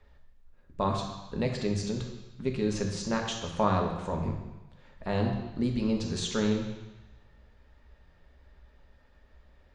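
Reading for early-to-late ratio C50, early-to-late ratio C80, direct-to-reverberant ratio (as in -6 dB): 5.0 dB, 6.5 dB, 1.5 dB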